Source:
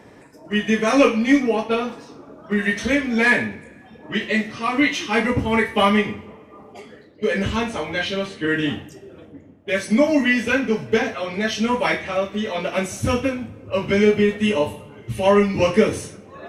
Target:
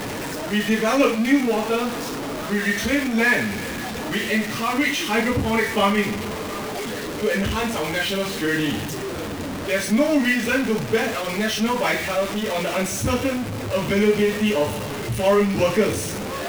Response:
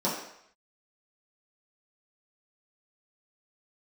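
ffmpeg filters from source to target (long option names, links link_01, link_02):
-af "aeval=exprs='val(0)+0.5*0.106*sgn(val(0))':channel_layout=same,flanger=delay=6.3:depth=9.4:regen=-58:speed=0.89:shape=triangular"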